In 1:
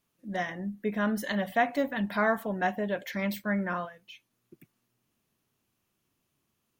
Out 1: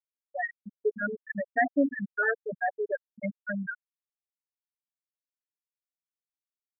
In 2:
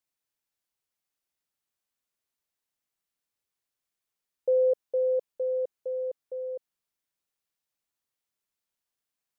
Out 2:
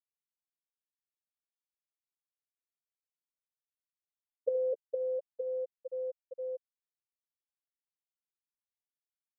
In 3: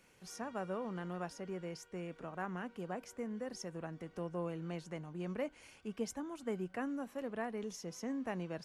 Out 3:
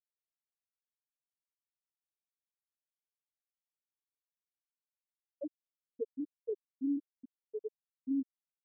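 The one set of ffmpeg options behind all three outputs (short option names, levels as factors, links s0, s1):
-filter_complex "[0:a]equalizer=f=730:t=o:w=1.7:g=-12,aecho=1:1:6.9:0.66,asplit=2[s0][s1];[s1]volume=23.7,asoftclip=hard,volume=0.0422,volume=0.447[s2];[s0][s2]amix=inputs=2:normalize=0,acompressor=mode=upward:threshold=0.0178:ratio=2.5,acrossover=split=220 2300:gain=0.0794 1 0.224[s3][s4][s5];[s3][s4][s5]amix=inputs=3:normalize=0,aecho=1:1:72:0.168,acontrast=49,asuperstop=centerf=1100:order=4:qfactor=4.5,afftfilt=real='re*gte(hypot(re,im),0.251)':imag='im*gte(hypot(re,im),0.251)':win_size=1024:overlap=0.75"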